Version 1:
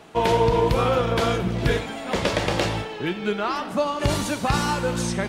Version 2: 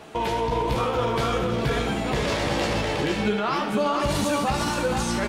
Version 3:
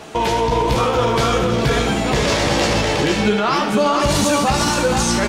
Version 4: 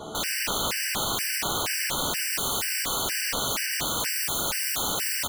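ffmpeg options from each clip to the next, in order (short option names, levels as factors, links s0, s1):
-filter_complex "[0:a]asplit=2[s0][s1];[s1]aecho=0:1:475:0.501[s2];[s0][s2]amix=inputs=2:normalize=0,alimiter=limit=0.112:level=0:latency=1:release=37,asplit=2[s3][s4];[s4]aecho=0:1:14|73:0.531|0.316[s5];[s3][s5]amix=inputs=2:normalize=0,volume=1.26"
-af "equalizer=f=6200:t=o:w=1:g=5.5,acontrast=89"
-af "aeval=exprs='(mod(9.44*val(0)+1,2)-1)/9.44':c=same,aecho=1:1:49.56|137:0.355|0.316,afftfilt=real='re*gt(sin(2*PI*2.1*pts/sr)*(1-2*mod(floor(b*sr/1024/1500),2)),0)':imag='im*gt(sin(2*PI*2.1*pts/sr)*(1-2*mod(floor(b*sr/1024/1500),2)),0)':win_size=1024:overlap=0.75,volume=0.841"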